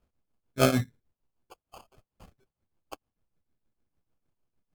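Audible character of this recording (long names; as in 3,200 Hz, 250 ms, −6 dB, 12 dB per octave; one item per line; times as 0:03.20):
phaser sweep stages 8, 0.78 Hz, lowest notch 800–1,700 Hz
aliases and images of a low sample rate 1,900 Hz, jitter 0%
tremolo triangle 6.6 Hz, depth 85%
AAC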